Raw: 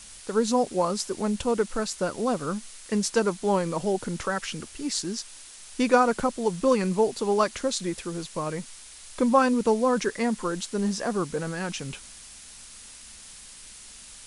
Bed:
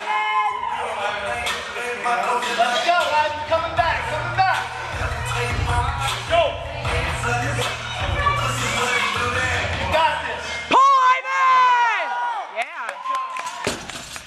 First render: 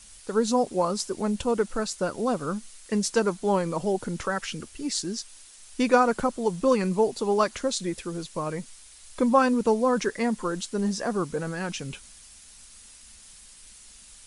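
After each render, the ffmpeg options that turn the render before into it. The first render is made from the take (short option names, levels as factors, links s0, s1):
-af "afftdn=nr=6:nf=-46"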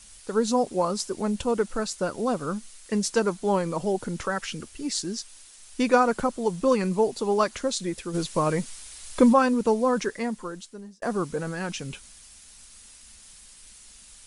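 -filter_complex "[0:a]asplit=3[s0][s1][s2];[s0]afade=t=out:st=8.13:d=0.02[s3];[s1]acontrast=69,afade=t=in:st=8.13:d=0.02,afade=t=out:st=9.32:d=0.02[s4];[s2]afade=t=in:st=9.32:d=0.02[s5];[s3][s4][s5]amix=inputs=3:normalize=0,asplit=2[s6][s7];[s6]atrim=end=11.02,asetpts=PTS-STARTPTS,afade=t=out:st=9.9:d=1.12[s8];[s7]atrim=start=11.02,asetpts=PTS-STARTPTS,afade=t=in:d=0.004:c=hsin[s9];[s8][s9]concat=n=2:v=0:a=1"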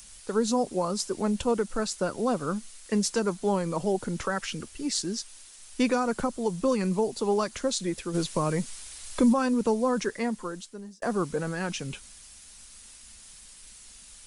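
-filter_complex "[0:a]acrossover=split=250|4300[s0][s1][s2];[s1]alimiter=limit=0.126:level=0:latency=1:release=257[s3];[s2]acompressor=mode=upward:threshold=0.00355:ratio=2.5[s4];[s0][s3][s4]amix=inputs=3:normalize=0"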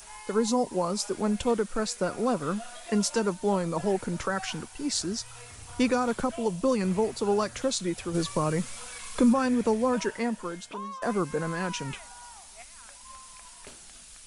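-filter_complex "[1:a]volume=0.0531[s0];[0:a][s0]amix=inputs=2:normalize=0"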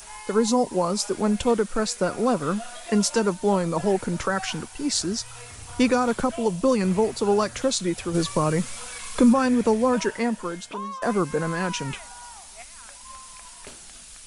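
-af "volume=1.68"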